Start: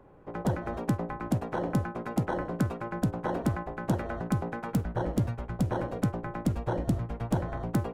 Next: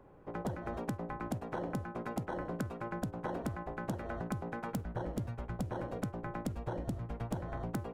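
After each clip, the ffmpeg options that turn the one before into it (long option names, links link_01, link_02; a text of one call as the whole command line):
ffmpeg -i in.wav -af "acompressor=threshold=-31dB:ratio=5,volume=-3dB" out.wav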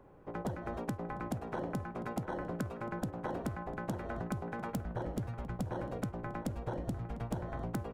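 ffmpeg -i in.wav -filter_complex "[0:a]asplit=2[link_01][link_02];[link_02]adelay=699.7,volume=-12dB,highshelf=frequency=4000:gain=-15.7[link_03];[link_01][link_03]amix=inputs=2:normalize=0" out.wav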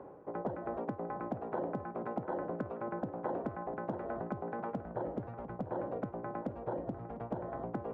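ffmpeg -i in.wav -af "aemphasis=mode=reproduction:type=75fm,areverse,acompressor=mode=upward:threshold=-37dB:ratio=2.5,areverse,bandpass=frequency=580:width_type=q:width=0.74:csg=0,volume=3dB" out.wav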